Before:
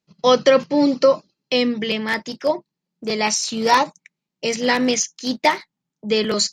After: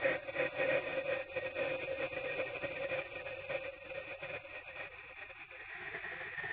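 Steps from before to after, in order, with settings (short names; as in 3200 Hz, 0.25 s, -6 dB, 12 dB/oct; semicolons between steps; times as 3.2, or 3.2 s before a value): Paulstretch 19×, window 0.50 s, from 2.01; spectral gate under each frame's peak -25 dB weak; vocal tract filter e; gain +18 dB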